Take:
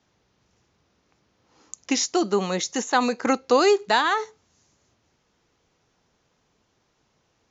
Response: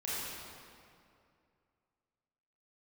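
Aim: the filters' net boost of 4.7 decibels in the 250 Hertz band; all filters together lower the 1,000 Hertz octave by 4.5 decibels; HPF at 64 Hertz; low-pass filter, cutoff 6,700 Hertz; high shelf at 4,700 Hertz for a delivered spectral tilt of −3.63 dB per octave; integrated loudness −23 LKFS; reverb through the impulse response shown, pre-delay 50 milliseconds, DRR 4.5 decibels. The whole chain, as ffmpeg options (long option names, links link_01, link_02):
-filter_complex "[0:a]highpass=64,lowpass=6700,equalizer=frequency=250:width_type=o:gain=6,equalizer=frequency=1000:width_type=o:gain=-6.5,highshelf=frequency=4700:gain=4,asplit=2[link_01][link_02];[1:a]atrim=start_sample=2205,adelay=50[link_03];[link_02][link_03]afir=irnorm=-1:irlink=0,volume=-9dB[link_04];[link_01][link_04]amix=inputs=2:normalize=0,volume=-2.5dB"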